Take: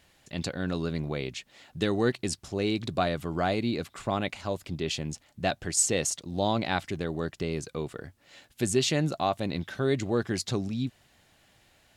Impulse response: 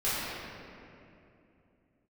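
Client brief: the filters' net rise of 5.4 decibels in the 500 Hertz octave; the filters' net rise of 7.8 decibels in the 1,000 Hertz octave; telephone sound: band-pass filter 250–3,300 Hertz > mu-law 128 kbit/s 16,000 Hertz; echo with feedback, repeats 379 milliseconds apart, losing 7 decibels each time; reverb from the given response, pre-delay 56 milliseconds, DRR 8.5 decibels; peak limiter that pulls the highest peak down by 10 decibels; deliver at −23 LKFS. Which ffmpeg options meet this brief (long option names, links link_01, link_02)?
-filter_complex "[0:a]equalizer=frequency=500:width_type=o:gain=5,equalizer=frequency=1000:width_type=o:gain=9,alimiter=limit=-16.5dB:level=0:latency=1,aecho=1:1:379|758|1137|1516|1895:0.447|0.201|0.0905|0.0407|0.0183,asplit=2[link_01][link_02];[1:a]atrim=start_sample=2205,adelay=56[link_03];[link_02][link_03]afir=irnorm=-1:irlink=0,volume=-19.5dB[link_04];[link_01][link_04]amix=inputs=2:normalize=0,highpass=250,lowpass=3300,volume=7dB" -ar 16000 -c:a pcm_mulaw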